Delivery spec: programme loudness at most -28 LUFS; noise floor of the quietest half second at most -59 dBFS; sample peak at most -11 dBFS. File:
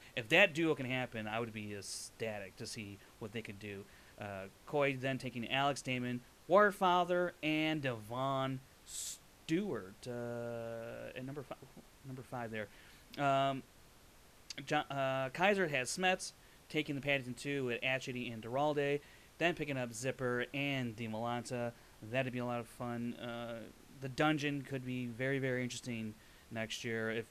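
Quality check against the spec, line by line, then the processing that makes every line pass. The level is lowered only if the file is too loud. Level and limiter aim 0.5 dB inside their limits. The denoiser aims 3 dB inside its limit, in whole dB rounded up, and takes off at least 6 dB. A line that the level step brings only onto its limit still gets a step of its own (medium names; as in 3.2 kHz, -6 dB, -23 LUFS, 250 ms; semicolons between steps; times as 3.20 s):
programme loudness -37.0 LUFS: pass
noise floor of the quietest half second -62 dBFS: pass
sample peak -13.5 dBFS: pass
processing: none needed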